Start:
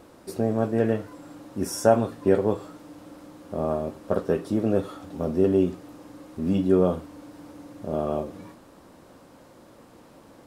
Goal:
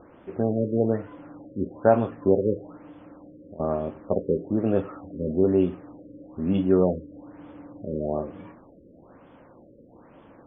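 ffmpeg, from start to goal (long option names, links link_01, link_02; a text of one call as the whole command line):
ffmpeg -i in.wav -filter_complex "[0:a]asettb=1/sr,asplit=3[link_01][link_02][link_03];[link_01]atrim=end=2.904[link_04];[link_02]atrim=start=2.9:end=3.6,asetpts=PTS-STARTPTS,afade=type=in:duration=0.004:curve=qsin,afade=type=out:start_time=0.696:duration=0.004:curve=qsin,acompressor=threshold=-42dB:ratio=6[link_05];[link_03]atrim=start=3.596[link_06];[link_04][link_05]acrossfade=duration=0.004:curve1=hsin:curve2=qsin[link_07];[link_07][link_06]acrossfade=duration=0.004:curve1=qsin:curve2=hsin,afftfilt=real='re*lt(b*sr/1024,560*pow(3600/560,0.5+0.5*sin(2*PI*1.1*pts/sr)))':imag='im*lt(b*sr/1024,560*pow(3600/560,0.5+0.5*sin(2*PI*1.1*pts/sr)))':win_size=1024:overlap=0.75" out.wav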